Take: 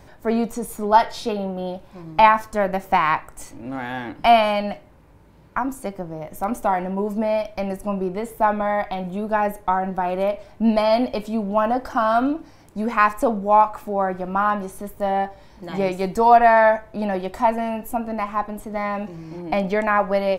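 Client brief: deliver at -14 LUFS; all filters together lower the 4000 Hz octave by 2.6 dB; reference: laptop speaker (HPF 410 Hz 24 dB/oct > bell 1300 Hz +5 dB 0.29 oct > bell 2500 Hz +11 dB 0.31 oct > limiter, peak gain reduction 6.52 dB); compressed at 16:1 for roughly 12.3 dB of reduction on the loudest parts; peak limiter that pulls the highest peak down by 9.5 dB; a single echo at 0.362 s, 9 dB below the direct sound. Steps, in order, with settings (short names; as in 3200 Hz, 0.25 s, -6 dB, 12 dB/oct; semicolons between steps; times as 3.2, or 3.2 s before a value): bell 4000 Hz -8 dB; compressor 16:1, threshold -21 dBFS; limiter -20.5 dBFS; HPF 410 Hz 24 dB/oct; bell 1300 Hz +5 dB 0.29 oct; bell 2500 Hz +11 dB 0.31 oct; echo 0.362 s -9 dB; gain +19 dB; limiter -4 dBFS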